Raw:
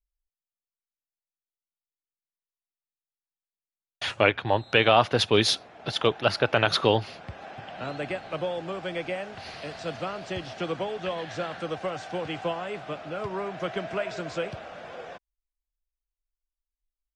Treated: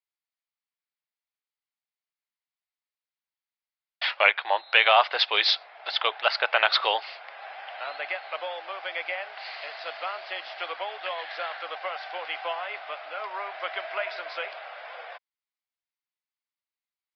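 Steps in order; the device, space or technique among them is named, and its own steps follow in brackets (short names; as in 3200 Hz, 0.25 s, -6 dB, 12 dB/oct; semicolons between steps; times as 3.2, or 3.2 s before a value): musical greeting card (downsampling 11025 Hz; HPF 680 Hz 24 dB/oct; bell 2100 Hz +5.5 dB 0.27 oct); gain +2.5 dB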